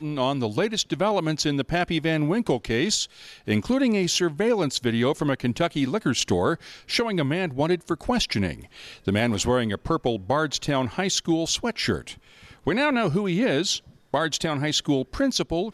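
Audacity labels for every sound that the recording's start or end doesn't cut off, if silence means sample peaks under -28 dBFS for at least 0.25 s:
3.480000	6.550000	sound
6.900000	8.540000	sound
9.070000	12.110000	sound
12.670000	13.770000	sound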